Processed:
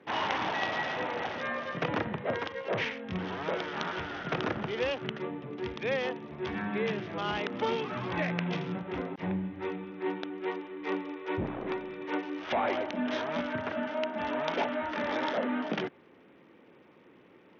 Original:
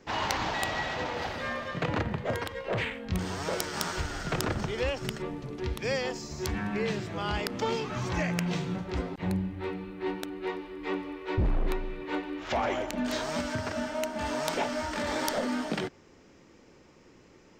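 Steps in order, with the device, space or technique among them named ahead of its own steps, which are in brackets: Bluetooth headset (HPF 170 Hz 12 dB/oct; downsampling 8000 Hz; SBC 64 kbps 48000 Hz)

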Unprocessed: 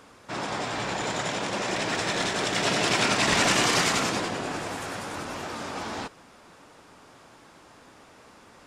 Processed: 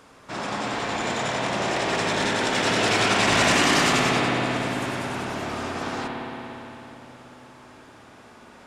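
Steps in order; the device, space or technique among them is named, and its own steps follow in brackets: dub delay into a spring reverb (darkening echo 0.288 s, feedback 69%, low-pass 860 Hz, level -12 dB; spring tank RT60 3.7 s, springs 56 ms, chirp 45 ms, DRR -1.5 dB)

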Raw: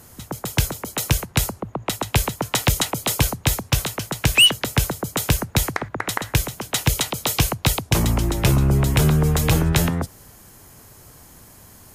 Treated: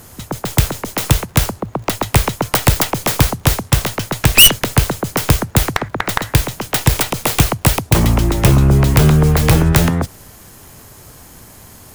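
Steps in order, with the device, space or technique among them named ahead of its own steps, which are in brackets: record under a worn stylus (tracing distortion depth 0.42 ms; crackle; pink noise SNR 40 dB); gain +6.5 dB

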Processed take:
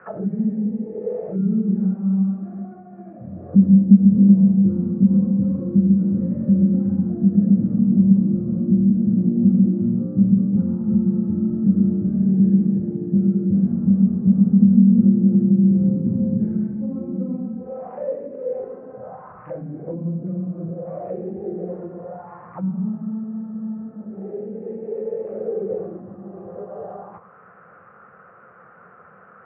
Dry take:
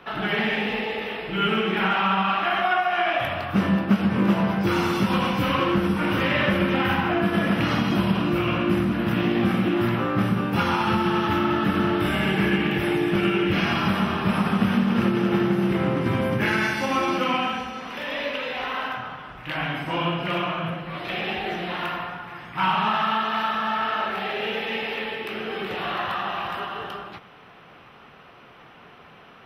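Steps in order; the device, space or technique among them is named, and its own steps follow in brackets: envelope filter bass rig (envelope low-pass 240–1600 Hz down, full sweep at -22.5 dBFS; speaker cabinet 80–2100 Hz, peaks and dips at 93 Hz +5 dB, 190 Hz +9 dB, 280 Hz -7 dB, 510 Hz +10 dB, 940 Hz -5 dB); gain -5.5 dB

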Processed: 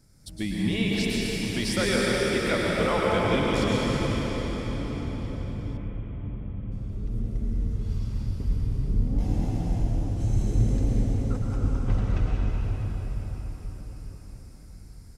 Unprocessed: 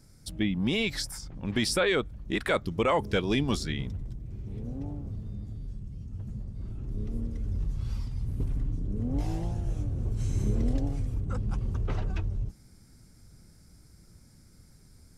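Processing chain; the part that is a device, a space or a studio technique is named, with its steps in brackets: cathedral (reverb RT60 5.8 s, pre-delay 0.101 s, DRR -5.5 dB); 5.77–6.72 steep low-pass 3200 Hz 48 dB/oct; feedback echo 0.111 s, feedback 52%, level -17.5 dB; gain -3 dB

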